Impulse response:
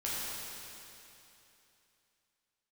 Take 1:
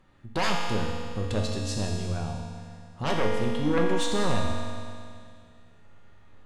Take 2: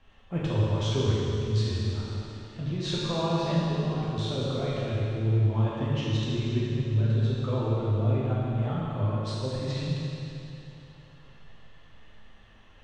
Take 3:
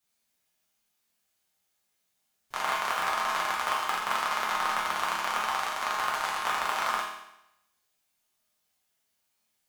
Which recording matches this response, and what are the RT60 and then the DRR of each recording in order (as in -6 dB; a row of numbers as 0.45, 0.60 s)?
2; 2.3, 3.0, 0.85 s; -2.0, -8.5, -5.5 dB